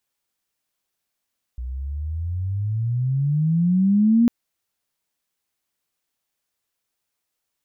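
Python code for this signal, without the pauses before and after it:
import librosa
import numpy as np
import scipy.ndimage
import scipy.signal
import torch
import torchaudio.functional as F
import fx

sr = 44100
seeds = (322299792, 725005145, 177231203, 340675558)

y = fx.riser_tone(sr, length_s=2.7, level_db=-12, wave='sine', hz=60.1, rise_st=24.0, swell_db=15.0)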